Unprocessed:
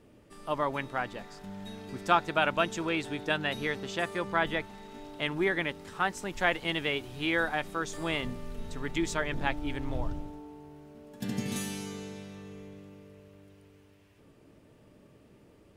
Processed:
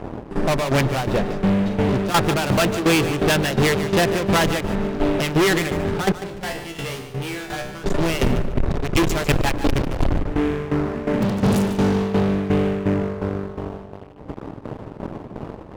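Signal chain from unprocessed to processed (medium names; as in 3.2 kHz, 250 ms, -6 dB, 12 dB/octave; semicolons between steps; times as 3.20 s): local Wiener filter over 41 samples; dynamic bell 260 Hz, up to -6 dB, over -49 dBFS, Q 1.6; in parallel at 0 dB: compression, threshold -43 dBFS, peak gain reduction 22 dB; on the sum: fuzz box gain 45 dB, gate -53 dBFS; 6.12–7.84 s: feedback comb 67 Hz, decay 0.74 s, harmonics all, mix 90%; tremolo saw down 2.8 Hz, depth 80%; feedback delay 147 ms, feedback 22%, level -12 dB; on a send at -20 dB: reverberation RT60 2.9 s, pre-delay 70 ms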